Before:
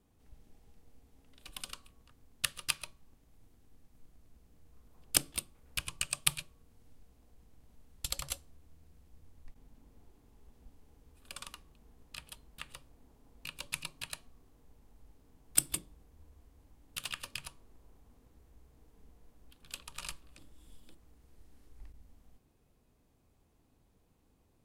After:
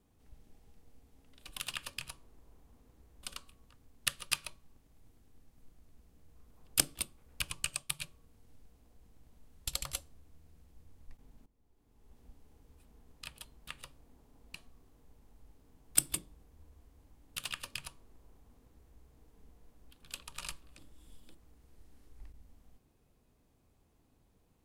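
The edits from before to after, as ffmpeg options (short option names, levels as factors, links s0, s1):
-filter_complex "[0:a]asplit=7[s0][s1][s2][s3][s4][s5][s6];[s0]atrim=end=1.602[s7];[s1]atrim=start=16.968:end=18.602[s8];[s2]atrim=start=1.598:end=6.36,asetpts=PTS-STARTPTS,afade=t=out:st=4.472:d=0.29:c=qua:silence=0.334965[s9];[s3]atrim=start=6.36:end=9.83,asetpts=PTS-STARTPTS,afade=t=in:d=0.004:c=hsin:silence=0.334965,afade=t=out:st=3.466:d=0.004:c=hsin:silence=0.158489[s10];[s4]atrim=start=9.83:end=11.222,asetpts=PTS-STARTPTS,afade=t=in:d=0.7:c=qua:silence=0.158489[s11];[s5]atrim=start=11.758:end=13.462[s12];[s6]atrim=start=14.148[s13];[s7][s8]acrossfade=d=0.004:c1=hsin:c2=hsin[s14];[s9][s10][s11]concat=n=3:v=0:a=1[s15];[s14][s15]acrossfade=d=0.004:c1=hsin:c2=hsin[s16];[s16][s12]acrossfade=d=0.004:c1=hsin:c2=hsin[s17];[s17][s13]acrossfade=d=0.004:c1=hsin:c2=hsin"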